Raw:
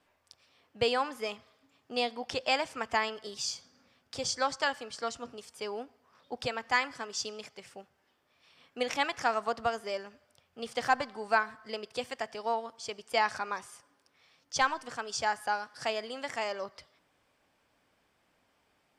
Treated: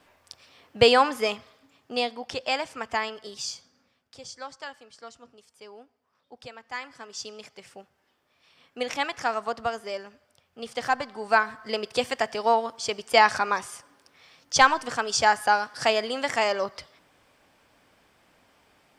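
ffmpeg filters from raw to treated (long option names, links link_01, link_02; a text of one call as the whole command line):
ffmpeg -i in.wav -af "volume=30dB,afade=type=out:start_time=1.02:duration=1.19:silence=0.334965,afade=type=out:start_time=3.44:duration=0.75:silence=0.298538,afade=type=in:start_time=6.69:duration=0.95:silence=0.281838,afade=type=in:start_time=11.04:duration=0.84:silence=0.398107" out.wav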